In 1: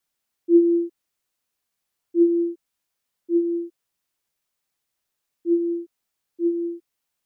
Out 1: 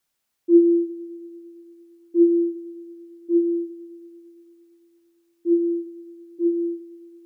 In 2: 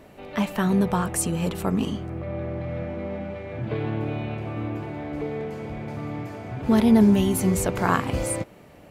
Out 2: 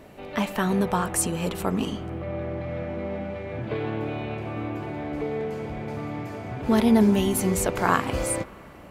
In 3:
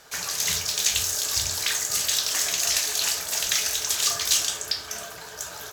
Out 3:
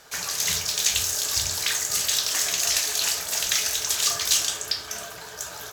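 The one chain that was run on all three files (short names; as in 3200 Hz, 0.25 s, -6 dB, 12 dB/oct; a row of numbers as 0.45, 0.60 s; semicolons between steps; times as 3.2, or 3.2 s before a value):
dynamic EQ 130 Hz, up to -6 dB, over -34 dBFS, Q 0.7; spring tank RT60 3.4 s, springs 43/50 ms, chirp 50 ms, DRR 17 dB; normalise peaks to -6 dBFS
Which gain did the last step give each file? +3.0, +1.5, +0.5 dB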